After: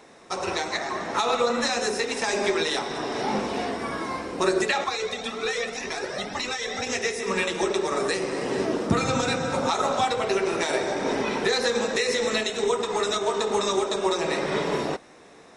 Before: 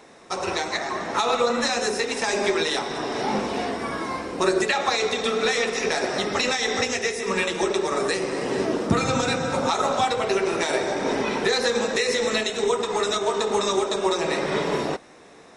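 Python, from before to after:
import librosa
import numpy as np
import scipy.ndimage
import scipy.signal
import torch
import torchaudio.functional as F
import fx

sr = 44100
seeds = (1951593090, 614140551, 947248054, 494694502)

y = fx.comb_cascade(x, sr, direction='rising', hz=1.9, at=(4.84, 6.87))
y = y * librosa.db_to_amplitude(-1.5)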